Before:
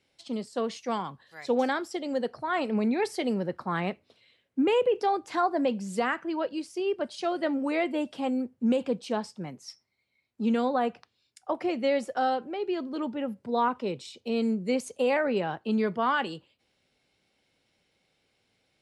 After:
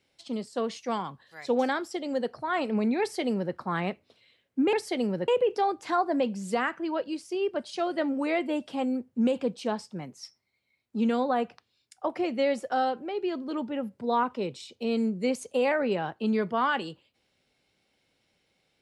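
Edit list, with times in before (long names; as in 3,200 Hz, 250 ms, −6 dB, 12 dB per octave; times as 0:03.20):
0:03.00–0:03.55: duplicate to 0:04.73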